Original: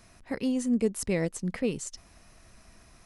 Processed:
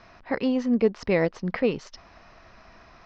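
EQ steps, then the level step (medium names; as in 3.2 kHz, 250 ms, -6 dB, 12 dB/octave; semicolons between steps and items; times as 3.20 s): steep low-pass 5.5 kHz 48 dB/octave; peaking EQ 1 kHz +11 dB 2.8 oct; 0.0 dB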